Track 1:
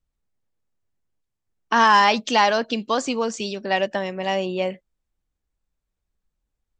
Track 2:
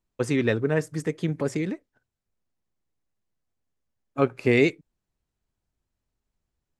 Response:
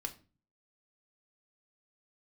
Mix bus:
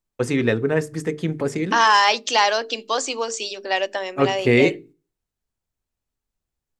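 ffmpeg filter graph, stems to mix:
-filter_complex "[0:a]highpass=f=310:w=0.5412,highpass=f=310:w=1.3066,highshelf=f=4k:g=9,volume=-1.5dB,asplit=2[a][b];[b]volume=-20dB[c];[1:a]volume=2dB,asplit=2[d][e];[e]volume=-10.5dB[f];[2:a]atrim=start_sample=2205[g];[c][f]amix=inputs=2:normalize=0[h];[h][g]afir=irnorm=-1:irlink=0[i];[a][d][i]amix=inputs=3:normalize=0,agate=range=-7dB:threshold=-45dB:ratio=16:detection=peak,bandreject=f=50:t=h:w=6,bandreject=f=100:t=h:w=6,bandreject=f=150:t=h:w=6,bandreject=f=200:t=h:w=6,bandreject=f=250:t=h:w=6,bandreject=f=300:t=h:w=6,bandreject=f=350:t=h:w=6,bandreject=f=400:t=h:w=6,bandreject=f=450:t=h:w=6"

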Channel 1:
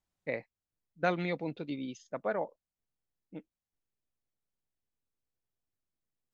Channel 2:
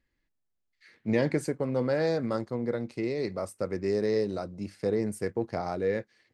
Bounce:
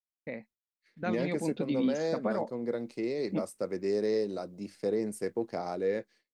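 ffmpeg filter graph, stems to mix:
-filter_complex "[0:a]equalizer=f=220:w=4:g=13.5,alimiter=level_in=2.5dB:limit=-24dB:level=0:latency=1:release=328,volume=-2.5dB,dynaudnorm=f=540:g=5:m=10dB,volume=0dB[a];[1:a]highpass=210,equalizer=f=1.5k:w=0.69:g=-4.5,volume=-0.5dB[b];[a][b]amix=inputs=2:normalize=0,agate=range=-33dB:threshold=-52dB:ratio=3:detection=peak,alimiter=limit=-20dB:level=0:latency=1:release=399"

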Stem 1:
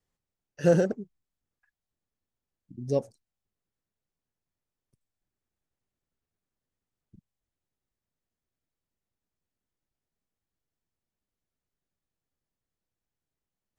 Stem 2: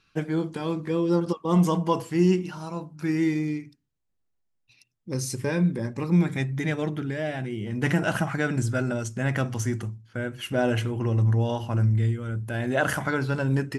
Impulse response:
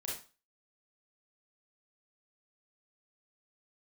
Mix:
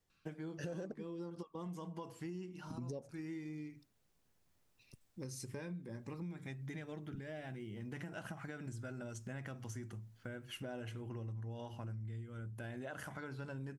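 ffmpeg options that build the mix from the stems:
-filter_complex "[0:a]dynaudnorm=f=460:g=13:m=12.5dB,alimiter=limit=-18.5dB:level=0:latency=1:release=141,volume=1.5dB[a];[1:a]alimiter=limit=-15.5dB:level=0:latency=1:release=211,adelay=100,volume=-10dB[b];[a][b]amix=inputs=2:normalize=0,acompressor=threshold=-43dB:ratio=5"

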